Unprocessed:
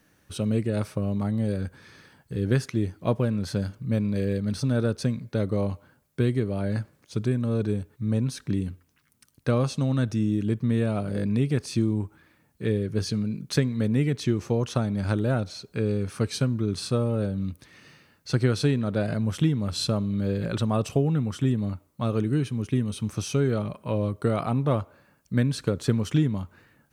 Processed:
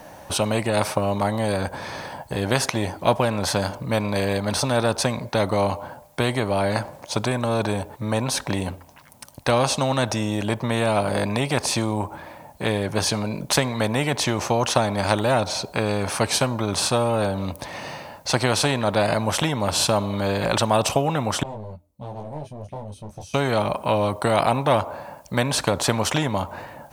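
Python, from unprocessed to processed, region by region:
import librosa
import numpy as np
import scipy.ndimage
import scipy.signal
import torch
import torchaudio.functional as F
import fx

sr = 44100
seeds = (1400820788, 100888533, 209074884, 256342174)

y = fx.chain(x, sr, fx.tone_stack(knobs='10-0-1'),
    fx.clip_hard(threshold_db=-39.0),
    fx.detune_double(cents=13), at=(21.43, 23.34))
y = fx.band_shelf(y, sr, hz=740.0, db=15.5, octaves=1.1)
y = fx.spectral_comp(y, sr, ratio=2.0)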